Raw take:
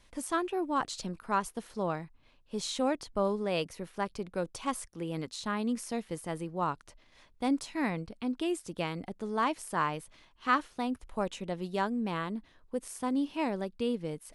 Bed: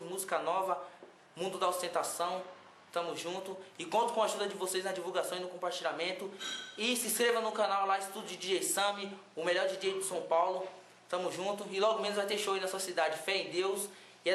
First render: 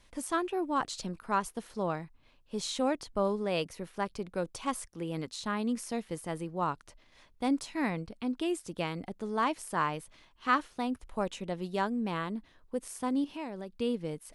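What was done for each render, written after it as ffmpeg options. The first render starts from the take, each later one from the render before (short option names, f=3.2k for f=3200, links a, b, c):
-filter_complex "[0:a]asettb=1/sr,asplit=3[a][b][c];[a]atrim=end=13.244[d];[b]atrim=start=13.24:end=13.79,asetpts=PTS-STARTPTS,afade=t=in:d=0.004:c=qsin,afade=t=out:st=0.546:d=0.004:c=qsin,acompressor=threshold=-38dB:ratio=2.5:attack=3.2:release=140:knee=1:detection=peak[e];[c]atrim=start=13.786[f];[d][e]acrossfade=d=0.004:c1=hsin:c2=qsin[g];[g][f]acrossfade=d=0.004:c1=qsin:c2=hsin"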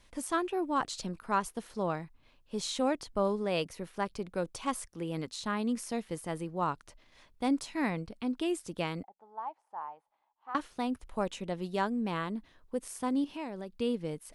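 -filter_complex "[0:a]asettb=1/sr,asplit=3[a][b][c];[a]atrim=end=9.034[d];[b]atrim=start=9.03:end=10.55,asetpts=PTS-STARTPTS,afade=t=in:d=0.004:c=qsin,afade=t=out:st=1.516:d=0.004:c=qsin,bandpass=f=830:t=q:w=8.7[e];[c]atrim=start=10.546[f];[d][e]acrossfade=d=0.004:c1=hsin:c2=qsin[g];[g][f]acrossfade=d=0.004:c1=qsin:c2=hsin"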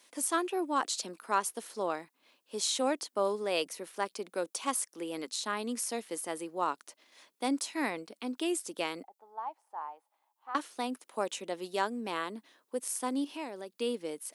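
-af "highpass=f=270:w=0.5412,highpass=f=270:w=1.3066,highshelf=f=5.2k:g=11"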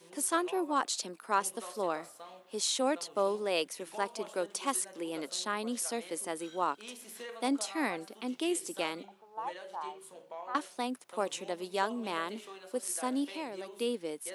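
-filter_complex "[1:a]volume=-15dB[a];[0:a][a]amix=inputs=2:normalize=0"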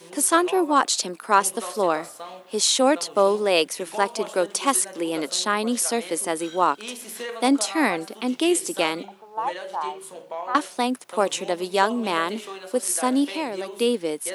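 -af "volume=11.5dB"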